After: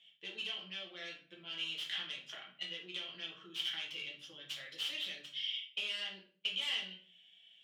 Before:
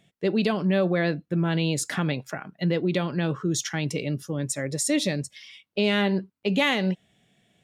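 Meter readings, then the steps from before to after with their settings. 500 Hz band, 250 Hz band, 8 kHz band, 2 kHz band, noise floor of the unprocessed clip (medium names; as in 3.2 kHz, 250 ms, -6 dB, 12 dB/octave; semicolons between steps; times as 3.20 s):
-29.5 dB, -34.0 dB, -24.0 dB, -12.5 dB, -74 dBFS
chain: tracing distortion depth 0.41 ms; compression 4:1, threshold -33 dBFS, peak gain reduction 13 dB; band-pass filter 3.1 kHz, Q 11; simulated room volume 42 m³, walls mixed, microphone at 0.88 m; trim +11 dB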